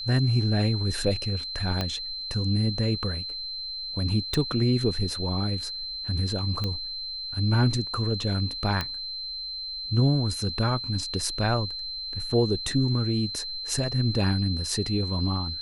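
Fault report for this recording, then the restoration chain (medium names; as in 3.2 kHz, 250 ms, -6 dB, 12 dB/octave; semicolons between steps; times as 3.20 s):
whine 4.1 kHz -32 dBFS
1.81 s: pop -13 dBFS
4.34 s: pop
6.64 s: pop -16 dBFS
8.81 s: pop -13 dBFS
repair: de-click; band-stop 4.1 kHz, Q 30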